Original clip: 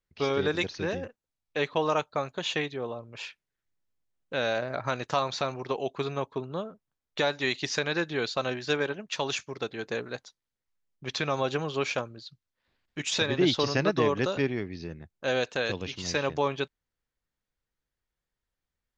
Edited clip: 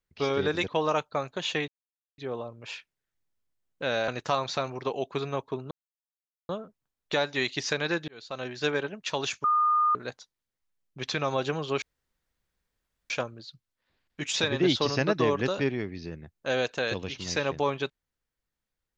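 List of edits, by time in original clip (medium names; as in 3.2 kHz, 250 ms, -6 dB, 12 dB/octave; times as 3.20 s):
0.68–1.69 s: delete
2.69 s: insert silence 0.50 s
4.59–4.92 s: delete
6.55 s: insert silence 0.78 s
8.14–8.74 s: fade in
9.50–10.01 s: bleep 1.22 kHz -20 dBFS
11.88 s: insert room tone 1.28 s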